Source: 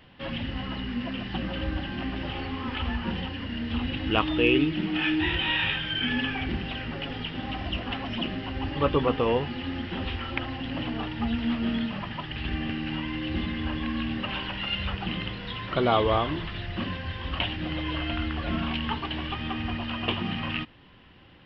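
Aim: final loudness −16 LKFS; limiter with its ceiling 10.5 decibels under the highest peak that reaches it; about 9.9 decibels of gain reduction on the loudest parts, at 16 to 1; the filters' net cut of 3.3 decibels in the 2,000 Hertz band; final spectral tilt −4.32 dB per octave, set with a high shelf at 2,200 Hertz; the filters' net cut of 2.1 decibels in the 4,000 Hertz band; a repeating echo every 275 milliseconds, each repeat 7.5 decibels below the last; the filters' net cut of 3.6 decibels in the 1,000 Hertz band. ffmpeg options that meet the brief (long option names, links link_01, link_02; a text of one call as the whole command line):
ffmpeg -i in.wav -af "equalizer=frequency=1000:width_type=o:gain=-4.5,equalizer=frequency=2000:width_type=o:gain=-5,highshelf=frequency=2200:gain=6,equalizer=frequency=4000:width_type=o:gain=-6,acompressor=threshold=-28dB:ratio=16,alimiter=level_in=3.5dB:limit=-24dB:level=0:latency=1,volume=-3.5dB,aecho=1:1:275|550|825|1100|1375:0.422|0.177|0.0744|0.0312|0.0131,volume=19.5dB" out.wav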